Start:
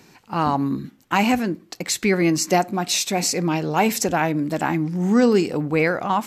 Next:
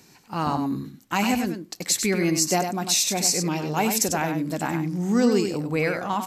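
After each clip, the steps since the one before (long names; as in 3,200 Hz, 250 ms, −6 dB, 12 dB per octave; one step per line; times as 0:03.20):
bass and treble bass +2 dB, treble +8 dB
on a send: single-tap delay 97 ms −7 dB
on the sum: level −5.5 dB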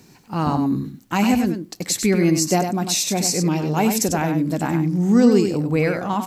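low-shelf EQ 500 Hz +8 dB
bit reduction 11 bits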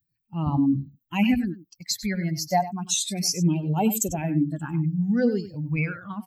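spectral dynamics exaggerated over time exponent 2
all-pass phaser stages 8, 0.33 Hz, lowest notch 330–1,800 Hz
level +2.5 dB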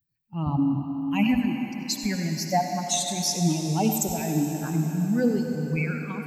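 on a send at −4 dB: high-pass filter 160 Hz + convolution reverb RT60 4.7 s, pre-delay 57 ms
on the sum: level −1.5 dB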